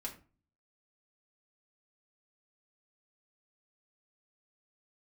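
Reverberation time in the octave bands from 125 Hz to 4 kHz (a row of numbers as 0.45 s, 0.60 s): 0.65 s, 0.55 s, 0.35 s, 0.35 s, 0.30 s, 0.25 s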